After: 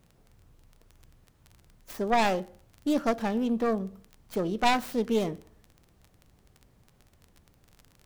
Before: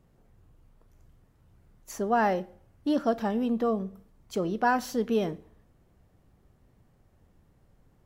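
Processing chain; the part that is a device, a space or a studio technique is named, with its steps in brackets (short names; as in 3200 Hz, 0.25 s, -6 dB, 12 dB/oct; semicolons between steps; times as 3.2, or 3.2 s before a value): record under a worn stylus (tracing distortion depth 0.34 ms; crackle 25/s -38 dBFS; pink noise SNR 41 dB)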